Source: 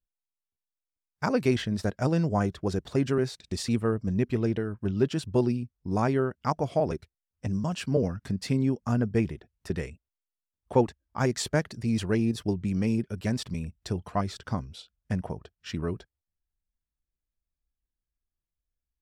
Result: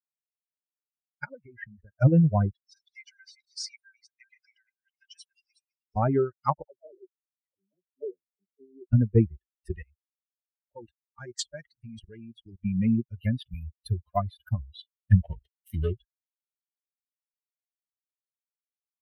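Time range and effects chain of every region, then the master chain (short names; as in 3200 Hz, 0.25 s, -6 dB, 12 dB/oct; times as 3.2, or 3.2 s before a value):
1.24–2 steep low-pass 2100 Hz + compressor 8:1, threshold -31 dBFS
2.53–5.96 reverse delay 0.22 s, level -6 dB + rippled Chebyshev high-pass 1500 Hz, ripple 9 dB
6.62–8.93 auto-wah 390–2100 Hz, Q 5, down, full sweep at -27 dBFS + air absorption 280 m + dispersion lows, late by 96 ms, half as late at 990 Hz
9.76–12.62 high shelf 8400 Hz -3 dB + level quantiser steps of 16 dB
13.12–14.58 air absorption 91 m + notch 1900 Hz, Q 26 + careless resampling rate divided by 3×, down none, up hold
15.12–15.93 switching dead time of 0.19 ms + high shelf 4900 Hz +6 dB + sample leveller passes 1
whole clip: per-bin expansion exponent 3; resonant low shelf 160 Hz +6.5 dB, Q 1.5; treble ducked by the level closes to 860 Hz, closed at -26.5 dBFS; gain +7.5 dB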